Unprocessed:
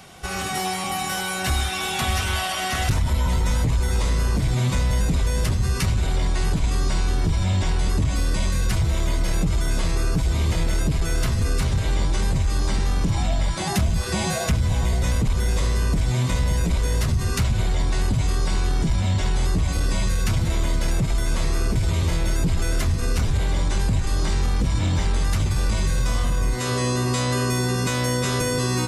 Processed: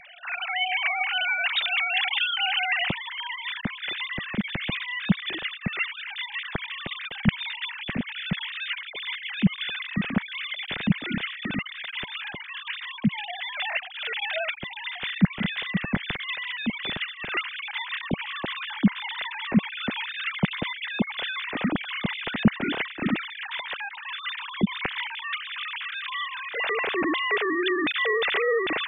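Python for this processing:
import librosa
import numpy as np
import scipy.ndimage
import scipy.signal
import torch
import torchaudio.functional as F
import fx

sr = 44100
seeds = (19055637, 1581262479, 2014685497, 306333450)

y = fx.sine_speech(x, sr)
y = fx.band_shelf(y, sr, hz=590.0, db=fx.steps((0.0, -15.5), (17.28, -8.5)), octaves=2.7)
y = y * 10.0 ** (-2.5 / 20.0)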